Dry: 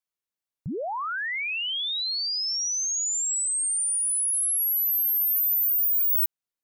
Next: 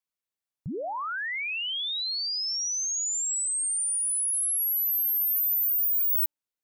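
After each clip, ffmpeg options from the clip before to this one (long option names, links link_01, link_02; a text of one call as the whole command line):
ffmpeg -i in.wav -af "bandreject=frequency=294.7:width_type=h:width=4,bandreject=frequency=589.4:width_type=h:width=4,bandreject=frequency=884.1:width_type=h:width=4,volume=-2dB" out.wav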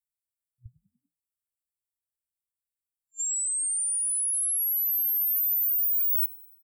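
ffmpeg -i in.wav -filter_complex "[0:a]afftfilt=real='re*(1-between(b*sr/4096,120,7300))':imag='im*(1-between(b*sr/4096,120,7300))':win_size=4096:overlap=0.75,asplit=5[link_01][link_02][link_03][link_04][link_05];[link_02]adelay=97,afreqshift=42,volume=-20dB[link_06];[link_03]adelay=194,afreqshift=84,volume=-25.4dB[link_07];[link_04]adelay=291,afreqshift=126,volume=-30.7dB[link_08];[link_05]adelay=388,afreqshift=168,volume=-36.1dB[link_09];[link_01][link_06][link_07][link_08][link_09]amix=inputs=5:normalize=0" out.wav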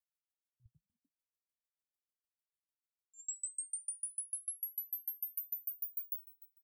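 ffmpeg -i in.wav -af "acompressor=threshold=-30dB:ratio=6,aeval=exprs='val(0)*pow(10,-40*if(lt(mod(6.7*n/s,1),2*abs(6.7)/1000),1-mod(6.7*n/s,1)/(2*abs(6.7)/1000),(mod(6.7*n/s,1)-2*abs(6.7)/1000)/(1-2*abs(6.7)/1000))/20)':channel_layout=same,volume=-1.5dB" out.wav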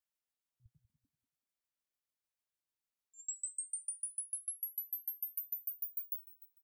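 ffmpeg -i in.wav -filter_complex "[0:a]asplit=2[link_01][link_02];[link_02]adelay=191,lowpass=frequency=3100:poles=1,volume=-11dB,asplit=2[link_03][link_04];[link_04]adelay=191,lowpass=frequency=3100:poles=1,volume=0.25,asplit=2[link_05][link_06];[link_06]adelay=191,lowpass=frequency=3100:poles=1,volume=0.25[link_07];[link_01][link_03][link_05][link_07]amix=inputs=4:normalize=0" out.wav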